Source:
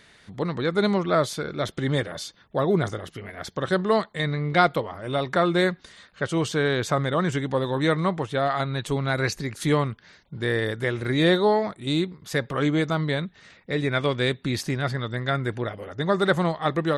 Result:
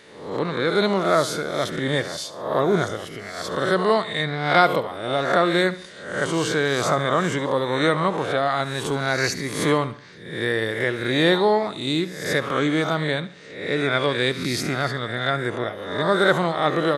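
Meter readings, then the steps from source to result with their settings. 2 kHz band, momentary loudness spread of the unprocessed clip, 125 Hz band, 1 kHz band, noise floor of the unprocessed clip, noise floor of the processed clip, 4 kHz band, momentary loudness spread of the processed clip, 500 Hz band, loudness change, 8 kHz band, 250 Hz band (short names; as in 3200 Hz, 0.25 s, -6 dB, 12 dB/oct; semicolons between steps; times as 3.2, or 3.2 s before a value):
+4.5 dB, 9 LU, -2.0 dB, +4.0 dB, -57 dBFS, -40 dBFS, +4.5 dB, 9 LU, +3.0 dB, +2.5 dB, +5.5 dB, +1.0 dB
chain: spectral swells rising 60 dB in 0.70 s; HPF 180 Hz 6 dB/oct; feedback echo 71 ms, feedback 41%, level -16 dB; gain +1.5 dB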